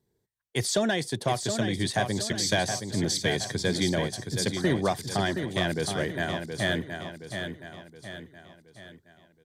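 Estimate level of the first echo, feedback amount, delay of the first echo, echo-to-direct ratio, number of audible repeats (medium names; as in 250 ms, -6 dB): -7.0 dB, 46%, 721 ms, -6.0 dB, 5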